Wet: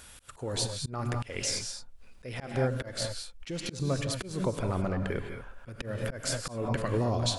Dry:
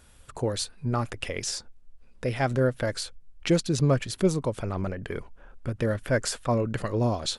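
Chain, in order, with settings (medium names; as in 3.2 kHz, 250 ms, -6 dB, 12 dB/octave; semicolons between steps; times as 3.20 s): compression 10:1, threshold -24 dBFS, peak gain reduction 8 dB; gated-style reverb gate 240 ms rising, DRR 5.5 dB; slow attack 208 ms; tape noise reduction on one side only encoder only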